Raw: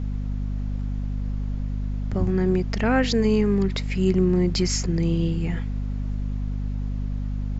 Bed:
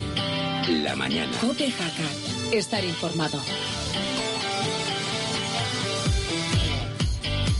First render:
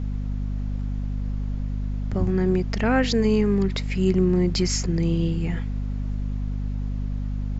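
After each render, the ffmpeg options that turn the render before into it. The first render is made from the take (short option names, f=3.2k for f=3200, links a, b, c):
-af anull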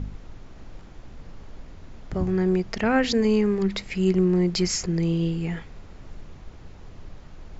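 -af "bandreject=f=50:t=h:w=4,bandreject=f=100:t=h:w=4,bandreject=f=150:t=h:w=4,bandreject=f=200:t=h:w=4,bandreject=f=250:t=h:w=4"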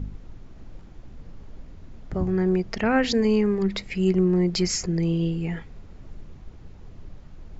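-af "afftdn=nr=6:nf=-45"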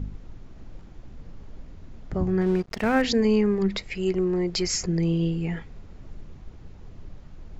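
-filter_complex "[0:a]asettb=1/sr,asplit=3[a][b][c];[a]atrim=end=2.414[d];[b]atrim=start=2.41:end=3.02,asetpts=PTS-STARTPTS,afade=t=in:d=0.004:c=qsin,afade=t=out:st=0.606:d=0.004:c=qsin,aeval=exprs='sgn(val(0))*max(abs(val(0))-0.0126,0)':c=same[e];[c]atrim=start=3.016[f];[d][e]acrossfade=d=0.004:c1=hsin:c2=qsin[g];[g][f]acrossfade=d=0.004:c1=qsin:c2=hsin,asettb=1/sr,asplit=3[h][i][j];[h]atrim=end=3.774[k];[i]atrim=start=3.77:end=4.74,asetpts=PTS-STARTPTS,afade=t=in:d=0.004:c=qsin,afade=t=out:st=0.966:d=0.004:c=qsin,equalizer=f=200:t=o:w=0.75:g=-9[l];[j]atrim=start=4.736[m];[k][l]acrossfade=d=0.004:c1=hsin:c2=qsin[n];[n][m]acrossfade=d=0.004:c1=qsin:c2=hsin"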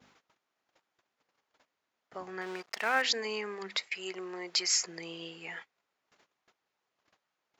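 -af "agate=range=-20dB:threshold=-35dB:ratio=16:detection=peak,highpass=940"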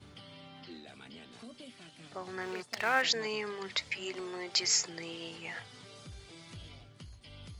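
-filter_complex "[1:a]volume=-25dB[a];[0:a][a]amix=inputs=2:normalize=0"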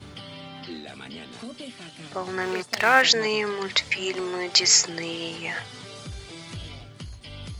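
-af "volume=11dB"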